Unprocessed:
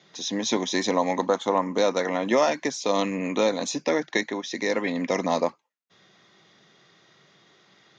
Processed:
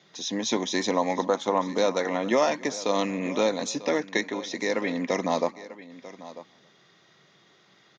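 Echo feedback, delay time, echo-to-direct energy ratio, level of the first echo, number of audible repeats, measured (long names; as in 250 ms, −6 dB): repeats not evenly spaced, 274 ms, −15.5 dB, −23.5 dB, 2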